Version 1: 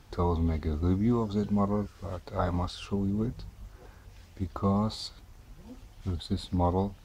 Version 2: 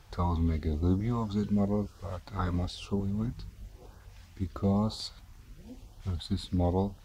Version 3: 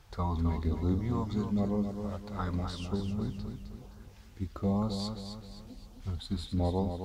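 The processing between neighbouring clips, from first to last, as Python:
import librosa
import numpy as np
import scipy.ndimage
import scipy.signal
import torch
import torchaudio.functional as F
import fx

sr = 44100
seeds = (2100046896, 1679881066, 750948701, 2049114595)

y1 = fx.filter_lfo_notch(x, sr, shape='saw_up', hz=1.0, low_hz=230.0, high_hz=2400.0, q=1.2)
y2 = fx.echo_feedback(y1, sr, ms=261, feedback_pct=42, wet_db=-7.0)
y2 = y2 * 10.0 ** (-2.5 / 20.0)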